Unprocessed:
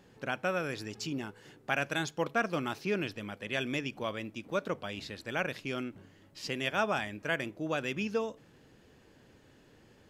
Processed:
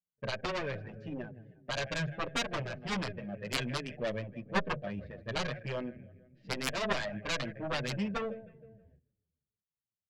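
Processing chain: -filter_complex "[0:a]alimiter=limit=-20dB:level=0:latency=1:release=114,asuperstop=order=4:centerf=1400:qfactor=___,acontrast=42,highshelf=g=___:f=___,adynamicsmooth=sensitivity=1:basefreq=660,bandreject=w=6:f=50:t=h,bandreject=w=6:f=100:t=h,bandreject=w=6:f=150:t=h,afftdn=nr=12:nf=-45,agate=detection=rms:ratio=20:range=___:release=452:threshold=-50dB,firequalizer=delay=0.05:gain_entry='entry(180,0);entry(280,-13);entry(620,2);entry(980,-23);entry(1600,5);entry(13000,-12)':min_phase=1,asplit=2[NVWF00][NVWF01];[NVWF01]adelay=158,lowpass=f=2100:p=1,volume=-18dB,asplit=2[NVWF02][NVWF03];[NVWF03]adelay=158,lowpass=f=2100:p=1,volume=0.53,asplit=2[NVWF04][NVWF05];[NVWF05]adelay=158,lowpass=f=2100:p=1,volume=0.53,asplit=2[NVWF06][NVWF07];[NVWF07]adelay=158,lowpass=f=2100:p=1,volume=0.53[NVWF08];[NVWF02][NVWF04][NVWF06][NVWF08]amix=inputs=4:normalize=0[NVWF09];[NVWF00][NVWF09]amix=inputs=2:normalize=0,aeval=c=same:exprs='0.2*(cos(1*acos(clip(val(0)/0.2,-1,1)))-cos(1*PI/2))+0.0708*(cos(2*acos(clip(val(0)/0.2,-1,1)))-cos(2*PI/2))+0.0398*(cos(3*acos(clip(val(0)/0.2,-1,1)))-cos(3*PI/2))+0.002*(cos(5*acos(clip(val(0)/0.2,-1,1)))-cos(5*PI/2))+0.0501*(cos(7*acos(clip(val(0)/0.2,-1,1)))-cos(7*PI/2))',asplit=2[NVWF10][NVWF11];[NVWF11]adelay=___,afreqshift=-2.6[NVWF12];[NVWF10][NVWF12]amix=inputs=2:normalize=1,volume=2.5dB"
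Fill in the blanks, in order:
7.1, 6, 6200, -44dB, 7.3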